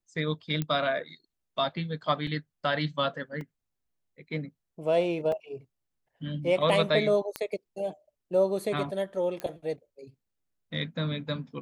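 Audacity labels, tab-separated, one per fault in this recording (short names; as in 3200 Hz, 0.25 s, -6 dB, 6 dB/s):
0.620000	0.620000	pop -17 dBFS
2.270000	2.270000	gap 2.5 ms
3.410000	3.410000	gap 2.1 ms
5.320000	5.320000	gap 2.4 ms
7.360000	7.360000	pop -15 dBFS
9.400000	9.400000	pop -20 dBFS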